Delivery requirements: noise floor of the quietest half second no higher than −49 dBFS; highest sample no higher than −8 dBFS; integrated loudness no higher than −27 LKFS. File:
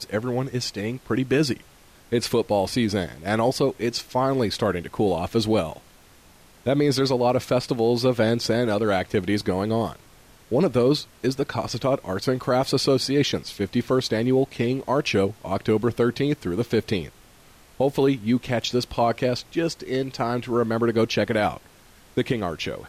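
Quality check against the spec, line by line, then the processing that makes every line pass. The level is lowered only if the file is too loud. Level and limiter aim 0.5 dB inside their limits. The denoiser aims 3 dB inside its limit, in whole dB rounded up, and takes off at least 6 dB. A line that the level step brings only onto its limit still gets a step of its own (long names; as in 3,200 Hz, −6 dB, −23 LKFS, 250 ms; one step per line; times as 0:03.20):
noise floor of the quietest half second −52 dBFS: in spec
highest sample −10.5 dBFS: in spec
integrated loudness −24.0 LKFS: out of spec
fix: level −3.5 dB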